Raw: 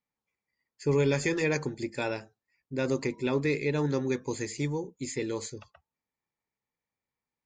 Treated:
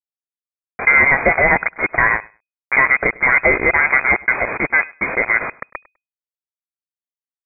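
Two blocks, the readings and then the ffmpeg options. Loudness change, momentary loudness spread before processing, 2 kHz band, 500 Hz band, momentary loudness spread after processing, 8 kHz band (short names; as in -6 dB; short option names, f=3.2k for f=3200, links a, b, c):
+16.0 dB, 9 LU, +24.5 dB, +6.5 dB, 7 LU, under -40 dB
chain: -af "highpass=950,equalizer=f=1.5k:t=o:w=2:g=-8,acompressor=mode=upward:threshold=-35dB:ratio=2.5,aresample=16000,acrusher=bits=6:mix=0:aa=0.000001,aresample=44100,aecho=1:1:101|202:0.0708|0.0113,lowpass=f=2.1k:t=q:w=0.5098,lowpass=f=2.1k:t=q:w=0.6013,lowpass=f=2.1k:t=q:w=0.9,lowpass=f=2.1k:t=q:w=2.563,afreqshift=-2500,alimiter=level_in=29dB:limit=-1dB:release=50:level=0:latency=1,volume=-1dB"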